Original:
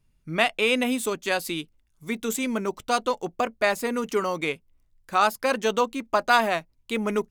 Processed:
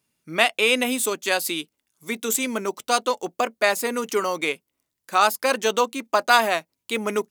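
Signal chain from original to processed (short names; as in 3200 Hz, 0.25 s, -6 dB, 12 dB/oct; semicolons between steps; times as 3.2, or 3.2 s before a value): HPF 250 Hz 12 dB/oct; high shelf 4400 Hz +7.5 dB; gain +2 dB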